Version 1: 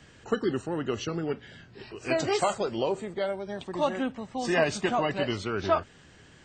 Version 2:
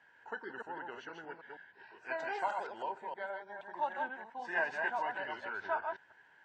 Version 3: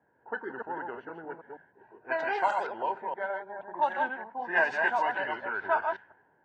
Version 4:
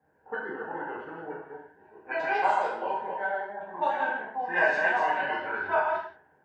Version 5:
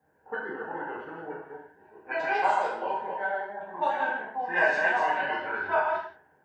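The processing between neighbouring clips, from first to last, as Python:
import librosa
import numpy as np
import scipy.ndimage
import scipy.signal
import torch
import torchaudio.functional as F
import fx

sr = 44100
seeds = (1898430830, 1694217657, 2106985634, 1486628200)

y1 = fx.reverse_delay(x, sr, ms=157, wet_db=-4)
y1 = fx.double_bandpass(y1, sr, hz=1200.0, octaves=0.71)
y2 = fx.env_lowpass(y1, sr, base_hz=480.0, full_db=-30.0)
y2 = fx.hum_notches(y2, sr, base_hz=50, count=4)
y2 = y2 * 10.0 ** (8.0 / 20.0)
y3 = fx.rev_gated(y2, sr, seeds[0], gate_ms=210, shape='falling', drr_db=-6.0)
y3 = y3 * 10.0 ** (-4.0 / 20.0)
y4 = fx.high_shelf(y3, sr, hz=5500.0, db=5.0)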